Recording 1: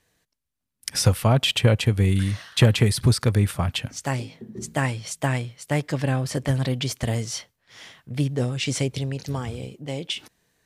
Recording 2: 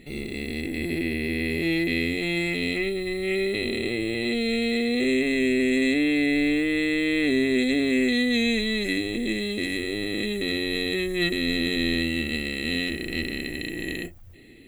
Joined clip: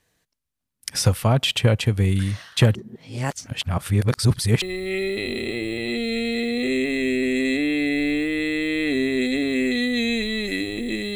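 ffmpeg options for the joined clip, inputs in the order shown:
ffmpeg -i cue0.wav -i cue1.wav -filter_complex "[0:a]apad=whole_dur=11.15,atrim=end=11.15,asplit=2[link_01][link_02];[link_01]atrim=end=2.752[link_03];[link_02]atrim=start=2.748:end=4.622,asetpts=PTS-STARTPTS,areverse[link_04];[1:a]atrim=start=2.988:end=9.52[link_05];[link_03][link_04]acrossfade=duration=0.004:curve1=hsin:curve2=hsin[link_06];[link_06][link_05]acrossfade=duration=0.004:curve1=hsin:curve2=hsin" out.wav

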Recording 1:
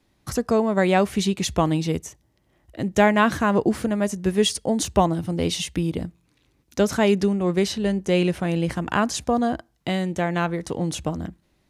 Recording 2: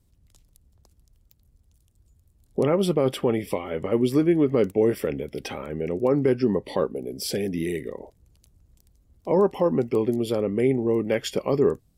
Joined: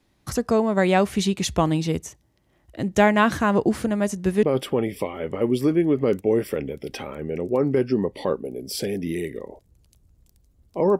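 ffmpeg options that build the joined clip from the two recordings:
ffmpeg -i cue0.wav -i cue1.wav -filter_complex "[0:a]apad=whole_dur=10.99,atrim=end=10.99,atrim=end=4.432[link_01];[1:a]atrim=start=2.938:end=9.5[link_02];[link_01][link_02]acrossfade=duration=0.004:curve1=hsin:curve2=hsin" out.wav

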